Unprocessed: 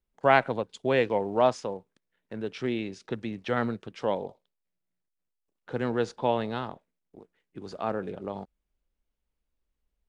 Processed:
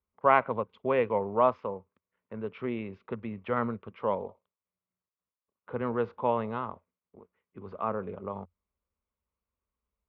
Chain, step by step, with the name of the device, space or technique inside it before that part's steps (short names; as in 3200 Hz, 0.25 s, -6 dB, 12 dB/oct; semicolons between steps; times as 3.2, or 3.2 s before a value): bass cabinet (speaker cabinet 76–2300 Hz, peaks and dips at 88 Hz +8 dB, 140 Hz -9 dB, 310 Hz -10 dB, 740 Hz -6 dB, 1100 Hz +8 dB, 1700 Hz -9 dB)